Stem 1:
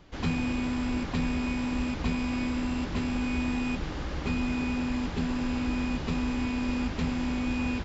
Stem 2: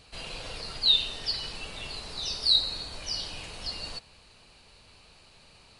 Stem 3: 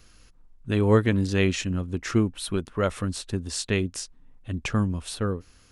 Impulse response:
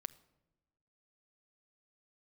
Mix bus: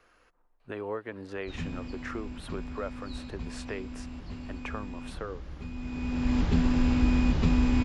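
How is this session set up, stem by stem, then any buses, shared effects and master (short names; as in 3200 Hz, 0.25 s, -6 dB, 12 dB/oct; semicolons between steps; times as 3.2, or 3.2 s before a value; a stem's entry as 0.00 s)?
+0.5 dB, 1.35 s, no bus, no send, low shelf 180 Hz +10 dB; auto duck -16 dB, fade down 1.95 s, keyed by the third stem
-10.5 dB, 0.60 s, bus A, no send, dry
+1.5 dB, 0.00 s, bus A, no send, low shelf 490 Hz +5.5 dB
bus A: 0.0 dB, three-band isolator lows -24 dB, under 430 Hz, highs -19 dB, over 2200 Hz; compressor 2.5:1, threshold -38 dBFS, peak gain reduction 14.5 dB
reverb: off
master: dry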